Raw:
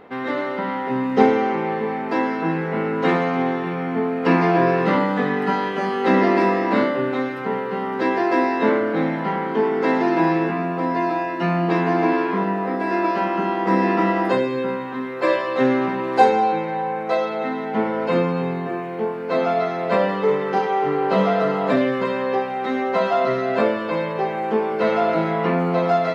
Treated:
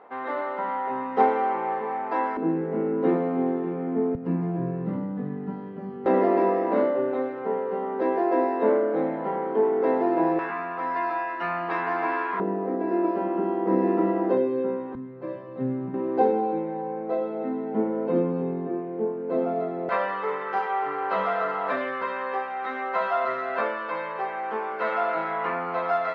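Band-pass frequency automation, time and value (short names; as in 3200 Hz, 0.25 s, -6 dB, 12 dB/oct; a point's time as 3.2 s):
band-pass, Q 1.4
890 Hz
from 2.37 s 340 Hz
from 4.15 s 110 Hz
from 6.06 s 530 Hz
from 10.39 s 1300 Hz
from 12.4 s 380 Hz
from 14.95 s 120 Hz
from 15.94 s 320 Hz
from 19.89 s 1300 Hz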